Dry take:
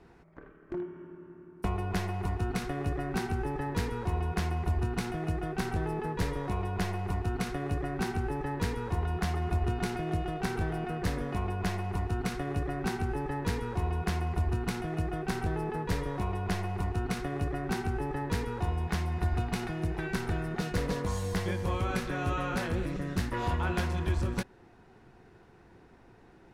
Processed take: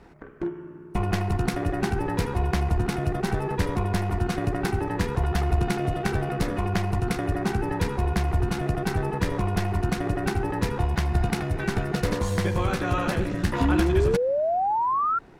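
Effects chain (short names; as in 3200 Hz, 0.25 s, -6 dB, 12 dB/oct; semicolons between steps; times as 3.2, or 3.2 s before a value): granular stretch 0.58×, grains 30 ms; painted sound rise, 13.6–15.19, 260–1400 Hz -31 dBFS; gain +7.5 dB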